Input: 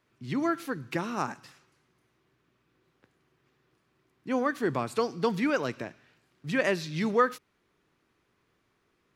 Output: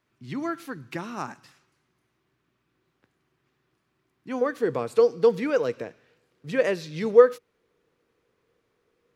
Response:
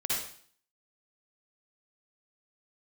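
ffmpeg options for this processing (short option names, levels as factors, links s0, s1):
-af "asetnsamples=n=441:p=0,asendcmd='4.41 equalizer g 15',equalizer=f=480:w=4.3:g=-3,volume=0.794"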